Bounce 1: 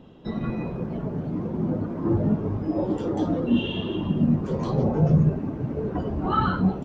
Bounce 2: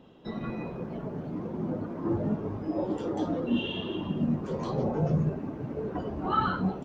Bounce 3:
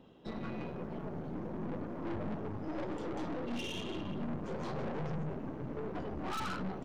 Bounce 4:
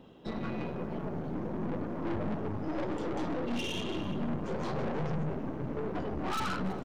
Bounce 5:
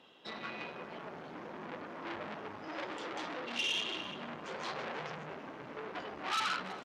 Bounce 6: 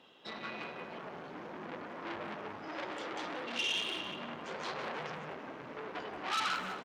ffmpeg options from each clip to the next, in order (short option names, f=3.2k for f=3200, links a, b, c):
-af "lowshelf=f=210:g=-8.5,volume=-2.5dB"
-af "aeval=exprs='(tanh(63.1*val(0)+0.75)-tanh(0.75))/63.1':c=same"
-af "aecho=1:1:329:0.106,volume=4.5dB"
-af "bandpass=f=3.2k:t=q:w=0.68:csg=0,volume=5.5dB"
-filter_complex "[0:a]asplit=2[a][b];[b]adelay=180,highpass=300,lowpass=3.4k,asoftclip=type=hard:threshold=-32.5dB,volume=-7dB[c];[a][c]amix=inputs=2:normalize=0"